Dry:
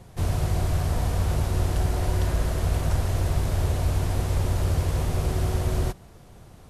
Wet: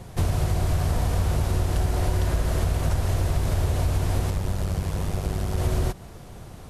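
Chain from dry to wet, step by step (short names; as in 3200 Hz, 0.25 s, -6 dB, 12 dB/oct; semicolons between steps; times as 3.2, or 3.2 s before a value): compressor 5:1, threshold -26 dBFS, peak gain reduction 8 dB; 4.3–5.58 AM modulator 98 Hz, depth 55%; gain +6.5 dB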